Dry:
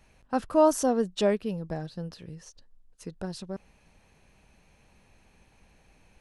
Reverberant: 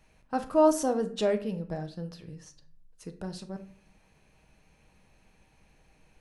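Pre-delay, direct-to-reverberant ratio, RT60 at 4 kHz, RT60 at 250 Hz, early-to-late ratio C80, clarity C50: 6 ms, 7.0 dB, 0.35 s, 0.80 s, 17.5 dB, 13.0 dB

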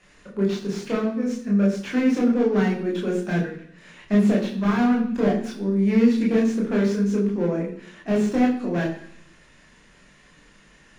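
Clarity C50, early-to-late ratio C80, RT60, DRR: 7.0 dB, 10.0 dB, 0.70 s, -2.5 dB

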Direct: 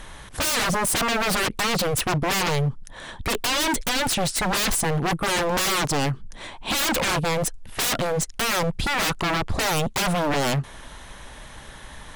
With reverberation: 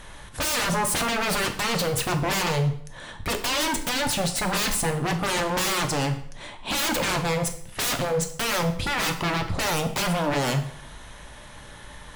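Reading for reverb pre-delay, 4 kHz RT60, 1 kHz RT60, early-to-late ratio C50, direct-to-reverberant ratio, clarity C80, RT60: 3 ms, 0.55 s, 0.60 s, 10.5 dB, 5.0 dB, 14.0 dB, 0.65 s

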